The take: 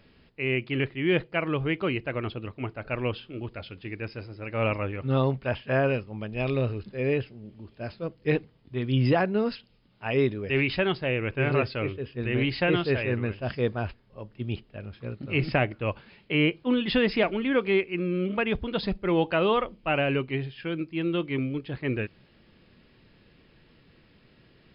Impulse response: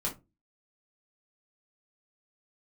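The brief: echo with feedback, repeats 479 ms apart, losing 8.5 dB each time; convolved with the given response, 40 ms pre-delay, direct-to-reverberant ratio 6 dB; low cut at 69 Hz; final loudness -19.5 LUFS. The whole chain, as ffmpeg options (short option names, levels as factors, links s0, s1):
-filter_complex "[0:a]highpass=69,aecho=1:1:479|958|1437|1916:0.376|0.143|0.0543|0.0206,asplit=2[s0][s1];[1:a]atrim=start_sample=2205,adelay=40[s2];[s1][s2]afir=irnorm=-1:irlink=0,volume=0.316[s3];[s0][s3]amix=inputs=2:normalize=0,volume=2.11"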